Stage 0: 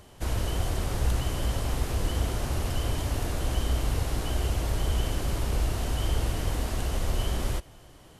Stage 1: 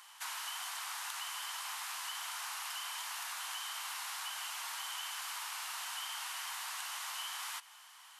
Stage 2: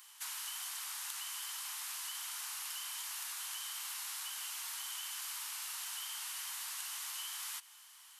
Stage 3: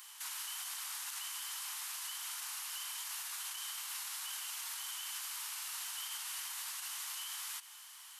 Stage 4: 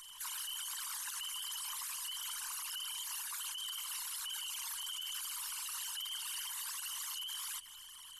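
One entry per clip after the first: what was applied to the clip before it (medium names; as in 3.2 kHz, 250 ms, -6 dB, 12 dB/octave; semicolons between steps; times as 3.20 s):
steep high-pass 900 Hz 48 dB/octave; compression 3:1, threshold -42 dBFS, peak gain reduction 5.5 dB; trim +2.5 dB
tilt EQ +3.5 dB/octave; trim -8.5 dB
peak limiter -37.5 dBFS, peak gain reduction 11 dB; trim +4.5 dB
resonances exaggerated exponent 3; added noise brown -77 dBFS; trim +1 dB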